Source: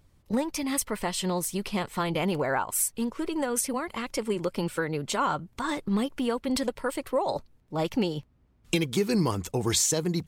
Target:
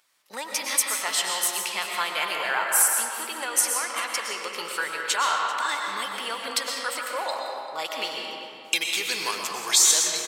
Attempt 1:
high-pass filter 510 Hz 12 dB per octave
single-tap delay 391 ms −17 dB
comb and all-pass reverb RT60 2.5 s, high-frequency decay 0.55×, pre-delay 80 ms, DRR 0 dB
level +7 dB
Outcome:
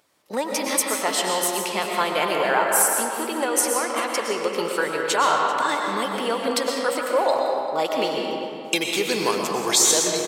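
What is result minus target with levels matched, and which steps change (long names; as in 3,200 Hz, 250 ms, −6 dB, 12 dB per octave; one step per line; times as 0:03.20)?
500 Hz band +10.5 dB
change: high-pass filter 1,300 Hz 12 dB per octave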